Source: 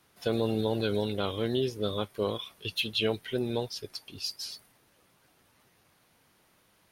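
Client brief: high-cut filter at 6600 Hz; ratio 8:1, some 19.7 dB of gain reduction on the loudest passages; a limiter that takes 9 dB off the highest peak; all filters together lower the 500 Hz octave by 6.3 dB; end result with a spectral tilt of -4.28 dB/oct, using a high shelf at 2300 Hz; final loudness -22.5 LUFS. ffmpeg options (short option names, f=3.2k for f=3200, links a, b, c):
-af "lowpass=6.6k,equalizer=f=500:t=o:g=-8,highshelf=f=2.3k:g=3,acompressor=threshold=-45dB:ratio=8,volume=28dB,alimiter=limit=-11.5dB:level=0:latency=1"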